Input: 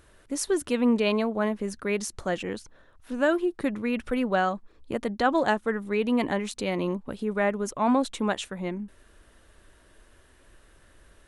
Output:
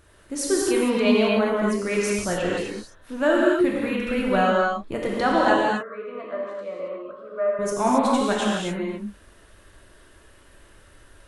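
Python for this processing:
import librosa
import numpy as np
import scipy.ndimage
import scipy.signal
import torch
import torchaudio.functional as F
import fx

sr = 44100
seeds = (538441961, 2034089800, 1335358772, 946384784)

y = fx.double_bandpass(x, sr, hz=840.0, octaves=0.98, at=(5.54, 7.59))
y = fx.rev_gated(y, sr, seeds[0], gate_ms=300, shape='flat', drr_db=-4.5)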